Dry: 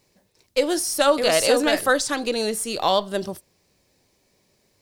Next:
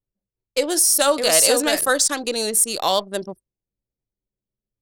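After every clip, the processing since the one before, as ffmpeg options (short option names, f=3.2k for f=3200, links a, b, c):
-filter_complex "[0:a]anlmdn=25.1,lowshelf=f=160:g=-6,acrossover=split=5800[a][b];[b]dynaudnorm=f=120:g=9:m=12.5dB[c];[a][c]amix=inputs=2:normalize=0"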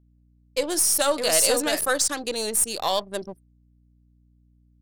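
-af "aeval=exprs='if(lt(val(0),0),0.708*val(0),val(0))':c=same,aeval=exprs='val(0)+0.00178*(sin(2*PI*60*n/s)+sin(2*PI*2*60*n/s)/2+sin(2*PI*3*60*n/s)/3+sin(2*PI*4*60*n/s)/4+sin(2*PI*5*60*n/s)/5)':c=same,volume=-3dB"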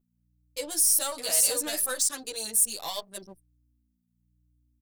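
-filter_complex "[0:a]asoftclip=type=tanh:threshold=-13dB,crystalizer=i=2.5:c=0,asplit=2[a][b];[b]adelay=9.2,afreqshift=1[c];[a][c]amix=inputs=2:normalize=1,volume=-8dB"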